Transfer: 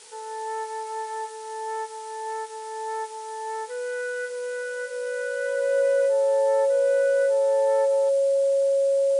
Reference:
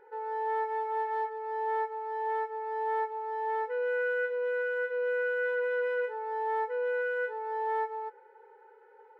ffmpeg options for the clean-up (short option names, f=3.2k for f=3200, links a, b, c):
-af "bandreject=f=550:w=30,afftdn=nr=19:nf=-36"